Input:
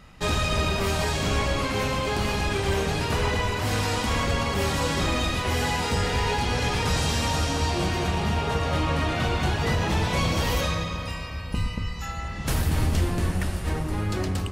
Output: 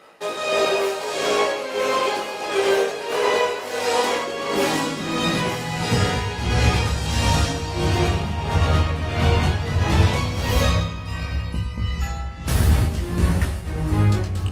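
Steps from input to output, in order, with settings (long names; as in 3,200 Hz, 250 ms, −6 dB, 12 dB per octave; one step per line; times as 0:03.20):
high-pass filter sweep 460 Hz → 73 Hz, 0:03.97–0:06.62
on a send at −15.5 dB: convolution reverb, pre-delay 3 ms
on the sum: chorus effect 0.16 Hz, delay 17.5 ms, depth 3.6 ms
amplitude tremolo 1.5 Hz, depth 64%
level +8 dB
Opus 32 kbit/s 48,000 Hz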